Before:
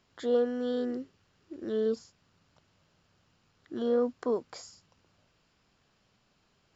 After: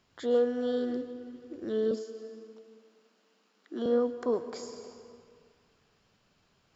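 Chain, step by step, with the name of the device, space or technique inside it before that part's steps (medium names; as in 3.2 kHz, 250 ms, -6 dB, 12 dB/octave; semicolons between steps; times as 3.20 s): compressed reverb return (on a send at -6 dB: reverberation RT60 2.0 s, pre-delay 103 ms + compression 4:1, threshold -32 dBFS, peak gain reduction 9 dB); 1.91–3.86 s: on the sum: steep high-pass 190 Hz 96 dB/octave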